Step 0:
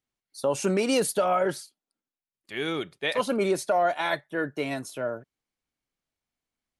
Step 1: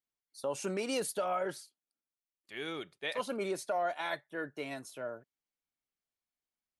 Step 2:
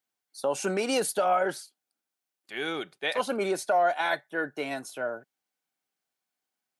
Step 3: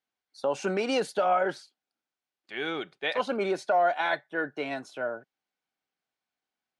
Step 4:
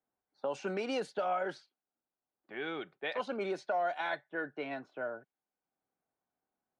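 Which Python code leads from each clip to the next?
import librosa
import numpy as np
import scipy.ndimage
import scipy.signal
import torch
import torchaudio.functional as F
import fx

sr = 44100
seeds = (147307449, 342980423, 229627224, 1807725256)

y1 = fx.low_shelf(x, sr, hz=290.0, db=-5.5)
y1 = y1 * 10.0 ** (-8.5 / 20.0)
y2 = scipy.signal.sosfilt(scipy.signal.butter(2, 160.0, 'highpass', fs=sr, output='sos'), y1)
y2 = fx.small_body(y2, sr, hz=(770.0, 1500.0), ring_ms=35, db=8)
y2 = y2 * 10.0 ** (7.0 / 20.0)
y3 = scipy.signal.sosfilt(scipy.signal.butter(2, 4500.0, 'lowpass', fs=sr, output='sos'), y2)
y4 = fx.env_lowpass(y3, sr, base_hz=940.0, full_db=-22.0)
y4 = fx.band_squash(y4, sr, depth_pct=40)
y4 = y4 * 10.0 ** (-7.5 / 20.0)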